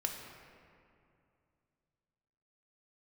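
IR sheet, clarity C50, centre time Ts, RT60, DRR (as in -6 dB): 4.0 dB, 63 ms, 2.5 s, 2.0 dB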